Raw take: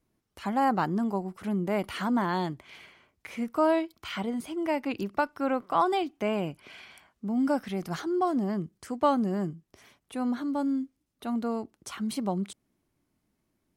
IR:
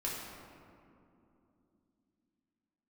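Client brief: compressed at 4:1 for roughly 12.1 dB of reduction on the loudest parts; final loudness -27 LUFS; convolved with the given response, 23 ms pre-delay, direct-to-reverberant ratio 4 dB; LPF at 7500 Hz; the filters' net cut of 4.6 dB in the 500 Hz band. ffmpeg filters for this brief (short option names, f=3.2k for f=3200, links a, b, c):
-filter_complex "[0:a]lowpass=7.5k,equalizer=f=500:t=o:g=-6.5,acompressor=threshold=-37dB:ratio=4,asplit=2[a][b];[1:a]atrim=start_sample=2205,adelay=23[c];[b][c]afir=irnorm=-1:irlink=0,volume=-7.5dB[d];[a][d]amix=inputs=2:normalize=0,volume=12dB"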